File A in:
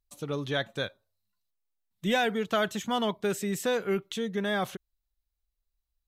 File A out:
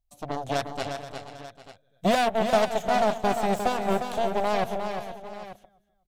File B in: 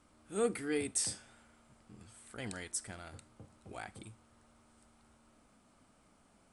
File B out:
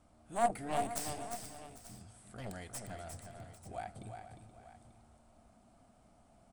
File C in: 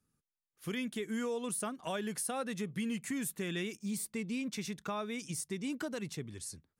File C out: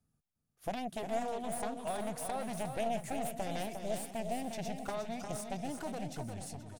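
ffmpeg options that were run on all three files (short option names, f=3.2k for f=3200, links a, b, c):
-filter_complex "[0:a]bass=f=250:g=10,treble=f=4k:g=2,asplit=2[a][b];[b]aecho=0:1:252|504:0.0841|0.0252[c];[a][c]amix=inputs=2:normalize=0,aeval=exprs='0.237*(cos(1*acos(clip(val(0)/0.237,-1,1)))-cos(1*PI/2))+0.0596*(cos(7*acos(clip(val(0)/0.237,-1,1)))-cos(7*PI/2))+0.0119*(cos(8*acos(clip(val(0)/0.237,-1,1)))-cos(8*PI/2))':c=same,equalizer=f=700:t=o:w=0.5:g=14.5,asplit=2[d][e];[e]aecho=0:1:354|383|477|797|889:0.447|0.1|0.188|0.119|0.168[f];[d][f]amix=inputs=2:normalize=0,volume=-3.5dB"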